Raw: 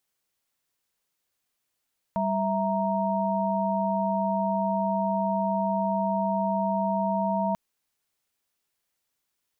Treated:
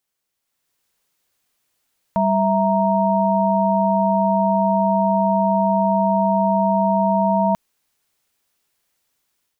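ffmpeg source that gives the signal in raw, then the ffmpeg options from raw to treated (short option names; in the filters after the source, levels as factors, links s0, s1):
-f lavfi -i "aevalsrc='0.0422*(sin(2*PI*196*t)+sin(2*PI*659.26*t)+sin(2*PI*932.33*t))':d=5.39:s=44100"
-af "dynaudnorm=f=410:g=3:m=2.66"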